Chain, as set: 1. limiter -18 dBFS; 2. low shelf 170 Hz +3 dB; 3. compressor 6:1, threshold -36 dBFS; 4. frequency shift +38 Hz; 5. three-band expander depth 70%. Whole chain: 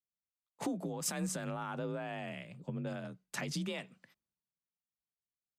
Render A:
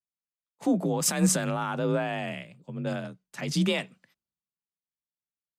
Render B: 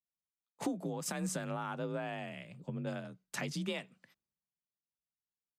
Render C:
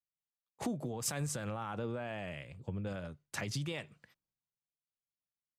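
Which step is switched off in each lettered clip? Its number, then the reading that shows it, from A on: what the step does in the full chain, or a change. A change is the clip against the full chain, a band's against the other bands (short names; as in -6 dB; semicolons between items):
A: 3, mean gain reduction 9.0 dB; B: 1, mean gain reduction 2.0 dB; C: 4, 125 Hz band +2.5 dB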